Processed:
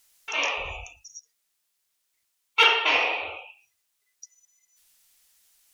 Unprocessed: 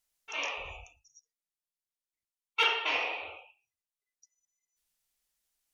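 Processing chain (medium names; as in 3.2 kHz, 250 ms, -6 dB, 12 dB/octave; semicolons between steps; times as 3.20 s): tape noise reduction on one side only encoder only; trim +8.5 dB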